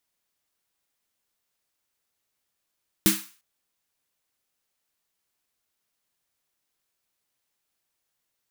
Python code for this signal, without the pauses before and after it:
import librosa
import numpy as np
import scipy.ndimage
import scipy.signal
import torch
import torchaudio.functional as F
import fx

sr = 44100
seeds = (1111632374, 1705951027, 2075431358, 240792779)

y = fx.drum_snare(sr, seeds[0], length_s=0.35, hz=200.0, second_hz=320.0, noise_db=-1, noise_from_hz=1100.0, decay_s=0.24, noise_decay_s=0.4)